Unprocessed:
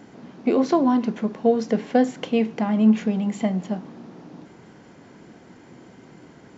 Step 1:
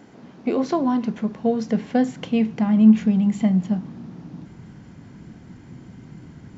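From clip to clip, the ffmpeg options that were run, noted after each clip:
-af "asubboost=boost=7.5:cutoff=170,volume=0.841"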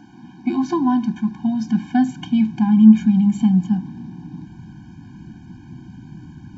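-af "afftfilt=real='re*eq(mod(floor(b*sr/1024/360),2),0)':imag='im*eq(mod(floor(b*sr/1024/360),2),0)':win_size=1024:overlap=0.75,volume=1.5"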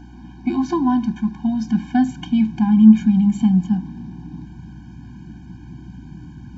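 -af "aeval=exprs='val(0)+0.00891*(sin(2*PI*60*n/s)+sin(2*PI*2*60*n/s)/2+sin(2*PI*3*60*n/s)/3+sin(2*PI*4*60*n/s)/4+sin(2*PI*5*60*n/s)/5)':c=same"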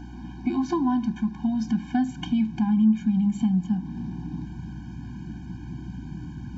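-af "acompressor=threshold=0.0447:ratio=2,volume=1.12"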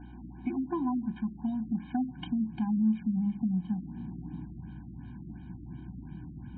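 -af "afftfilt=real='re*lt(b*sr/1024,630*pow(4400/630,0.5+0.5*sin(2*PI*2.8*pts/sr)))':imag='im*lt(b*sr/1024,630*pow(4400/630,0.5+0.5*sin(2*PI*2.8*pts/sr)))':win_size=1024:overlap=0.75,volume=0.447"

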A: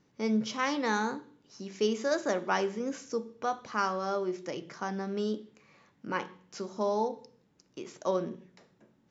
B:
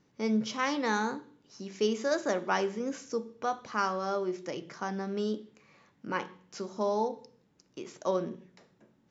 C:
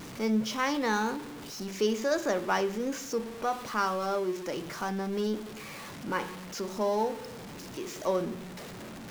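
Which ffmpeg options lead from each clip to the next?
-af anull
-af "aeval=exprs='val(0)+0.5*0.0133*sgn(val(0))':c=same"

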